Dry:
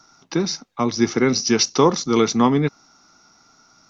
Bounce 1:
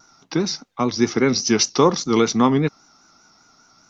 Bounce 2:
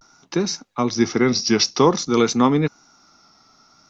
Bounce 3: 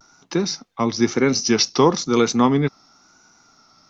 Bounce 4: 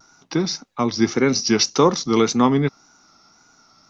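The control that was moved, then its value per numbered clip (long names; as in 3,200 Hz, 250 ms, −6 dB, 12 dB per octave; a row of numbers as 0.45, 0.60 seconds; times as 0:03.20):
pitch vibrato, speed: 5, 0.51, 1, 1.8 Hertz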